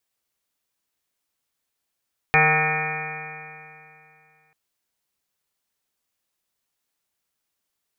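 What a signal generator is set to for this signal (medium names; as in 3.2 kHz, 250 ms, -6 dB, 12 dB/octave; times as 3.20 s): stretched partials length 2.19 s, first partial 153 Hz, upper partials -17.5/-1.5/-12/4/-8/-8/-2.5/-4.5/-5.5/4/-11/1/5 dB, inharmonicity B 0.0014, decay 2.68 s, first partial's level -23 dB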